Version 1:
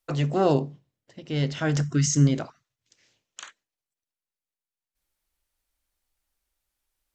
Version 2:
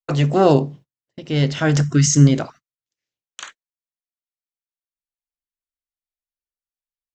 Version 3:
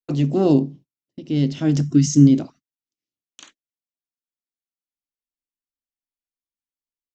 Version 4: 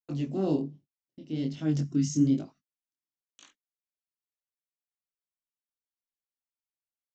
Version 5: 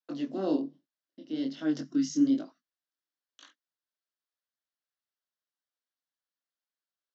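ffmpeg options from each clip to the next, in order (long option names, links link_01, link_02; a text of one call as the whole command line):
ffmpeg -i in.wav -af "agate=range=-30dB:threshold=-47dB:ratio=16:detection=peak,volume=7.5dB" out.wav
ffmpeg -i in.wav -af "firequalizer=gain_entry='entry(120,0);entry(280,10);entry(450,-3);entry(1500,-12);entry(2600,-4);entry(5500,-1);entry(8000,-6)':delay=0.05:min_phase=1,volume=-5dB" out.wav
ffmpeg -i in.wav -af "flanger=delay=19.5:depth=6.9:speed=1.2,volume=-8dB" out.wav
ffmpeg -i in.wav -af "highpass=frequency=270:width=0.5412,highpass=frequency=270:width=1.3066,equalizer=frequency=400:width_type=q:width=4:gain=-8,equalizer=frequency=830:width_type=q:width=4:gain=-5,equalizer=frequency=1600:width_type=q:width=4:gain=4,equalizer=frequency=2400:width_type=q:width=4:gain=-10,lowpass=frequency=5400:width=0.5412,lowpass=frequency=5400:width=1.3066,volume=3.5dB" out.wav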